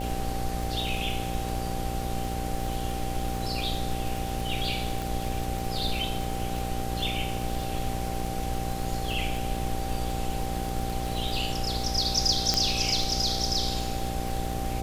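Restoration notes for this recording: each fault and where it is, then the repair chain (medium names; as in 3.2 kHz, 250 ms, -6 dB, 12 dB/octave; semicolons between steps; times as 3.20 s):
buzz 60 Hz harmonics 11 -33 dBFS
crackle 56 per s -31 dBFS
whine 780 Hz -35 dBFS
5.02 s: pop
12.54 s: pop -9 dBFS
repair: de-click; band-stop 780 Hz, Q 30; de-hum 60 Hz, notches 11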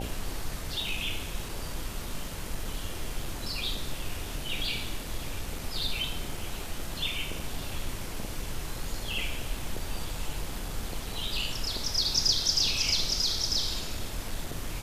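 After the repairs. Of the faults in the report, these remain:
5.02 s: pop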